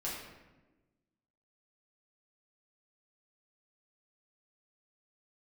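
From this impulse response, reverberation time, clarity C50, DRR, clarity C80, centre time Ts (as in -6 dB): 1.2 s, 1.5 dB, -7.0 dB, 4.0 dB, 64 ms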